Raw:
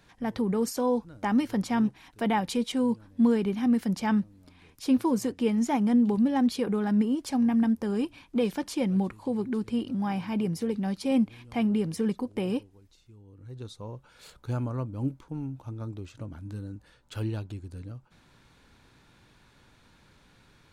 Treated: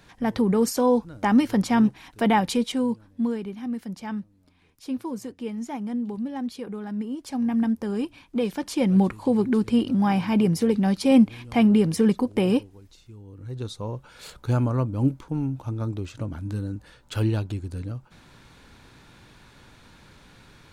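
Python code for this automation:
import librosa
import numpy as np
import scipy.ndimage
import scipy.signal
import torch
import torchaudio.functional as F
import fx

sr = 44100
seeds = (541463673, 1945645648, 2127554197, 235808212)

y = fx.gain(x, sr, db=fx.line((2.44, 6.0), (3.52, -6.5), (6.96, -6.5), (7.59, 1.0), (8.53, 1.0), (9.03, 8.0)))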